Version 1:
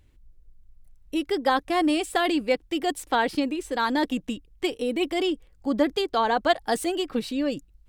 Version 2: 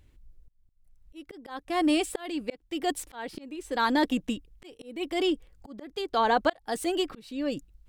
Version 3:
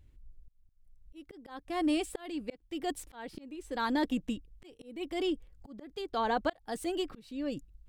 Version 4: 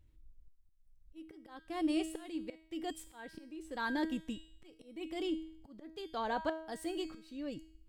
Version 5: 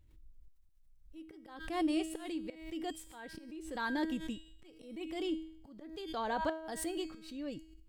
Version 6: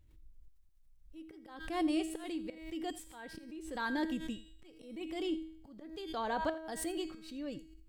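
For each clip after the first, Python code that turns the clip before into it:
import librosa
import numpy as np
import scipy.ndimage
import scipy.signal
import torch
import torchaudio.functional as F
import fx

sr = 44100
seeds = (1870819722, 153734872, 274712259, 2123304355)

y1 = fx.auto_swell(x, sr, attack_ms=480.0)
y2 = fx.low_shelf(y1, sr, hz=220.0, db=8.0)
y2 = y2 * librosa.db_to_amplitude(-7.5)
y3 = fx.comb_fb(y2, sr, f0_hz=320.0, decay_s=0.63, harmonics='all', damping=0.0, mix_pct=80)
y3 = y3 * librosa.db_to_amplitude(7.0)
y4 = fx.pre_swell(y3, sr, db_per_s=74.0)
y5 = y4 + 10.0 ** (-18.5 / 20.0) * np.pad(y4, (int(84 * sr / 1000.0), 0))[:len(y4)]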